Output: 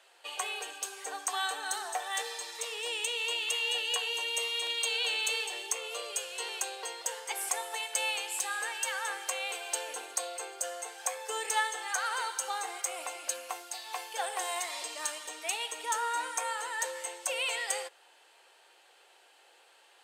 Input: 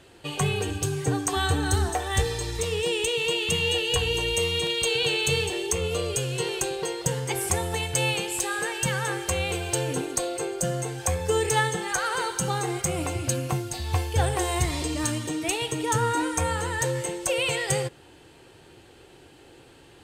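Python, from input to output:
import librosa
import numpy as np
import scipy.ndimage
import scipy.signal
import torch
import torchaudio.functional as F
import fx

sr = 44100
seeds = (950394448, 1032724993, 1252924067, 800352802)

y = scipy.signal.sosfilt(scipy.signal.butter(4, 610.0, 'highpass', fs=sr, output='sos'), x)
y = F.gain(torch.from_numpy(y), -5.0).numpy()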